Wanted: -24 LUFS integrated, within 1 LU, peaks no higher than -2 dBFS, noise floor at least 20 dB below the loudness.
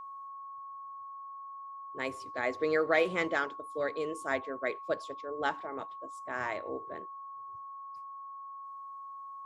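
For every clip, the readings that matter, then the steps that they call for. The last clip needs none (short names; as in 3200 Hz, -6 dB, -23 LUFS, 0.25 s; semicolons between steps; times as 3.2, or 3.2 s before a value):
steady tone 1100 Hz; tone level -42 dBFS; loudness -36.0 LUFS; peak -13.5 dBFS; loudness target -24.0 LUFS
-> notch 1100 Hz, Q 30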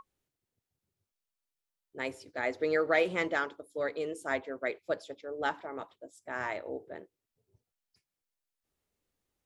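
steady tone none; loudness -34.0 LUFS; peak -13.0 dBFS; loudness target -24.0 LUFS
-> gain +10 dB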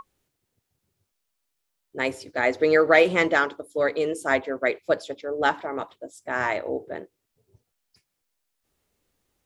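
loudness -24.0 LUFS; peak -3.0 dBFS; noise floor -80 dBFS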